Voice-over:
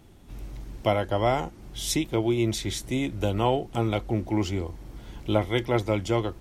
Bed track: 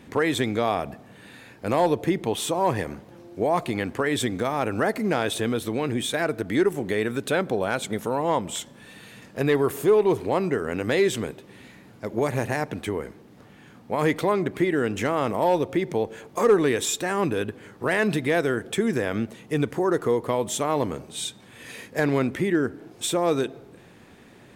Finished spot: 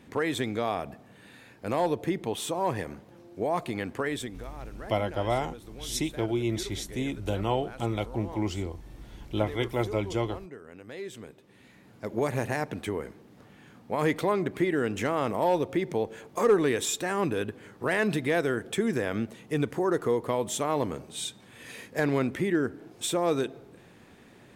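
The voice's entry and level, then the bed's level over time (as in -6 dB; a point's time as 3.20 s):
4.05 s, -4.0 dB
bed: 4.07 s -5.5 dB
4.52 s -19.5 dB
10.90 s -19.5 dB
12.04 s -3.5 dB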